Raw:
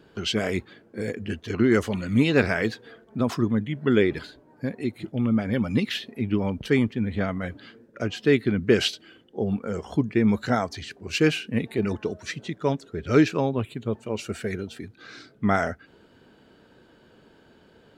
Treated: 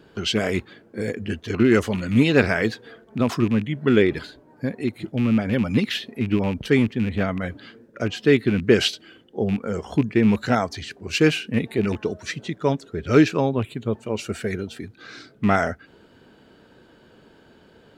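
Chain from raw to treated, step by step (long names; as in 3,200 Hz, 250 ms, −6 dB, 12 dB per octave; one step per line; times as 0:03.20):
loose part that buzzes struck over −26 dBFS, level −28 dBFS
level +3 dB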